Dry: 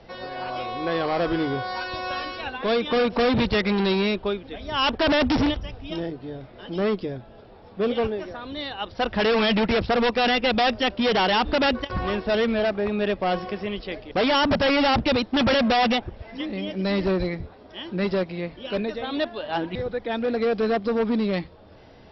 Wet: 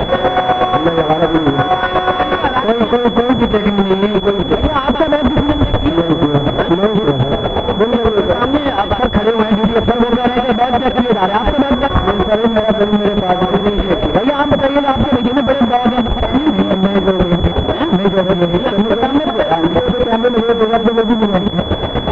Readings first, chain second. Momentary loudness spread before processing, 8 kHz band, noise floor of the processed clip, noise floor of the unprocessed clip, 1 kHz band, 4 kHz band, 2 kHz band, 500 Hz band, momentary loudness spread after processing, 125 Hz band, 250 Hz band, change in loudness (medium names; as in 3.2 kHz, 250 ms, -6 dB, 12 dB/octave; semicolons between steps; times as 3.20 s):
12 LU, no reading, -19 dBFS, -48 dBFS, +12.0 dB, +8.0 dB, +6.5 dB, +11.0 dB, 2 LU, +15.5 dB, +12.0 dB, +10.5 dB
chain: chunks repeated in reverse 120 ms, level -9.5 dB; compression 8:1, threshold -34 dBFS, peak gain reduction 16 dB; fuzz box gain 47 dB, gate -55 dBFS; square tremolo 8.2 Hz, depth 60%, duty 30%; class-D stage that switches slowly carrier 3.4 kHz; trim +6.5 dB